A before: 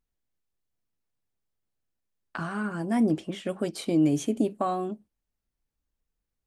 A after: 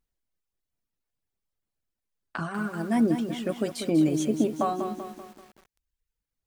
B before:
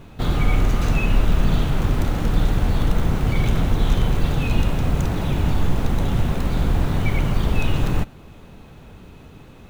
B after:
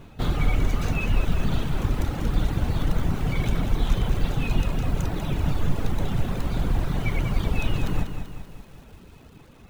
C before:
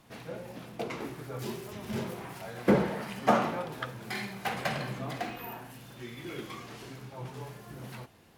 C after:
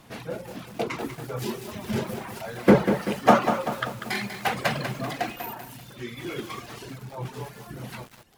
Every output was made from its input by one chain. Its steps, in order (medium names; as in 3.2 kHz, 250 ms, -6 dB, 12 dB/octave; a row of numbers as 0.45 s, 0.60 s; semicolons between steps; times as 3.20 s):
reverb removal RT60 1.2 s; bit-crushed delay 193 ms, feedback 55%, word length 8-bit, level -8 dB; normalise loudness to -27 LUFS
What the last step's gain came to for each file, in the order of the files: +1.5 dB, -2.5 dB, +7.5 dB